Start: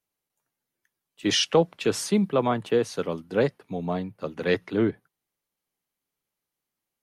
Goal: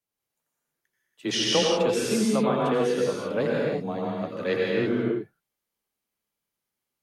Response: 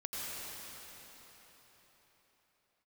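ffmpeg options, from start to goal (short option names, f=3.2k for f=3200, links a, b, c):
-filter_complex "[0:a]afreqshift=16,atempo=1[a];[1:a]atrim=start_sample=2205,afade=t=out:st=0.39:d=0.01,atrim=end_sample=17640[b];[a][b]afir=irnorm=-1:irlink=0"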